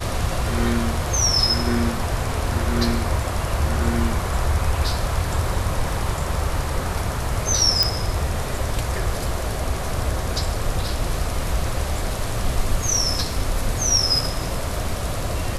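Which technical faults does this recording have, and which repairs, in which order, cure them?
7.83 pop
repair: de-click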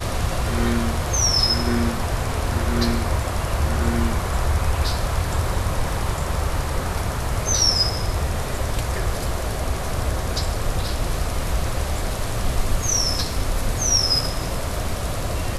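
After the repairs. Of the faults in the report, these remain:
none

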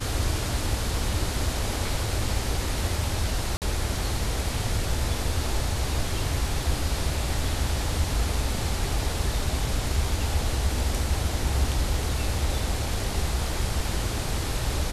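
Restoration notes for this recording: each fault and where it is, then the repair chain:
3.57–3.62 gap 48 ms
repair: interpolate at 3.57, 48 ms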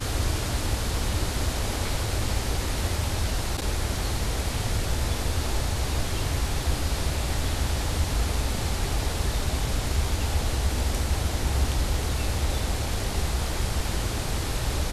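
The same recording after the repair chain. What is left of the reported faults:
none

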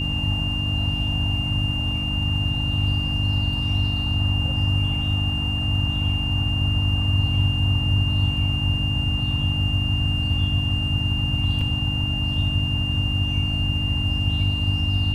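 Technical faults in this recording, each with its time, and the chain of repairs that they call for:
hum 50 Hz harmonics 6 -28 dBFS
tone 2800 Hz -26 dBFS
11.61 gap 3.1 ms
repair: de-hum 50 Hz, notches 6; notch 2800 Hz, Q 30; interpolate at 11.61, 3.1 ms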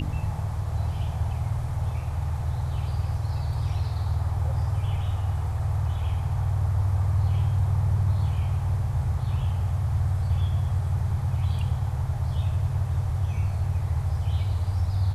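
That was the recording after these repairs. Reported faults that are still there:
none

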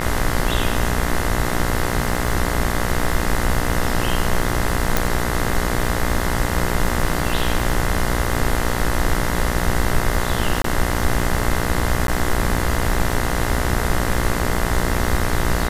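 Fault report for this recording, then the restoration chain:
buzz 60 Hz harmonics 35 -24 dBFS
crackle 58/s -26 dBFS
4.97 pop
10.62–10.64 gap 23 ms
12.07–12.08 gap 12 ms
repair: de-click; de-hum 60 Hz, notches 35; interpolate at 10.62, 23 ms; interpolate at 12.07, 12 ms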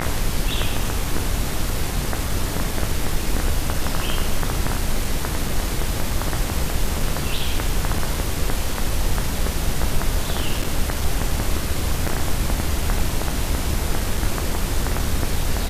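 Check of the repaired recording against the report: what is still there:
4.97 pop

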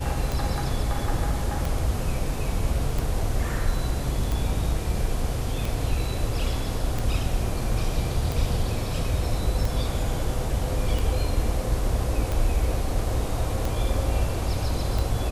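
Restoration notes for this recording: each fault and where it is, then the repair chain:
tick 45 rpm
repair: de-click

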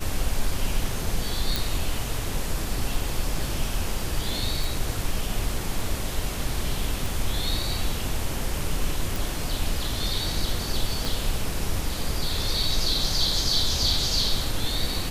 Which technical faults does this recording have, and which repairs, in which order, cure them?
1.56 pop
4.64 pop
7.06 pop
9.16 pop
11.05 pop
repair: de-click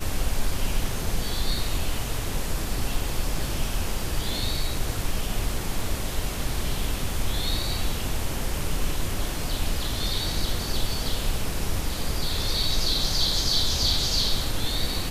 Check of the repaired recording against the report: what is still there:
7.06 pop
11.05 pop

